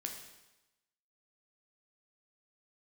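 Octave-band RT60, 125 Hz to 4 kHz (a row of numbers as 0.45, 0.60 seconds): 0.95, 0.95, 1.0, 1.0, 1.0, 1.0 seconds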